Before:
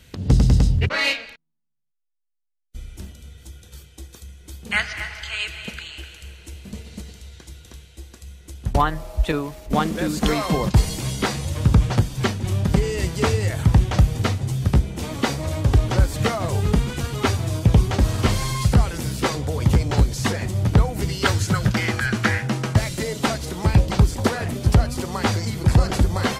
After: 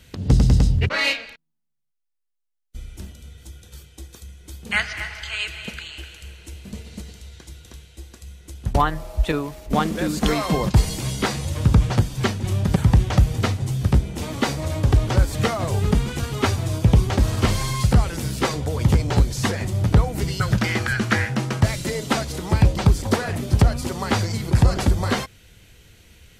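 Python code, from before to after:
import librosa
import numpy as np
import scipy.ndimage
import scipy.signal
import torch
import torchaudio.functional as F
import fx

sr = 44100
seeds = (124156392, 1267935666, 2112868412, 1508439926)

y = fx.edit(x, sr, fx.cut(start_s=12.76, length_s=0.81),
    fx.cut(start_s=21.21, length_s=0.32), tone=tone)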